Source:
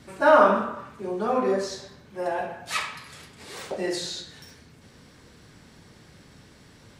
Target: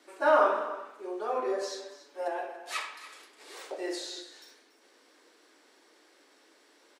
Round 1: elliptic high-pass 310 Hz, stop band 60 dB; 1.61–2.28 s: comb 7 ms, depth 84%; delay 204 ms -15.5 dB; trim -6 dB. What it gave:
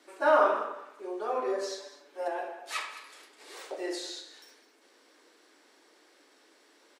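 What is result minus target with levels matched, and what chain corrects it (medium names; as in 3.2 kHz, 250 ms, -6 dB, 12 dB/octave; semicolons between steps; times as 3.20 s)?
echo 80 ms early
elliptic high-pass 310 Hz, stop band 60 dB; 1.61–2.28 s: comb 7 ms, depth 84%; delay 284 ms -15.5 dB; trim -6 dB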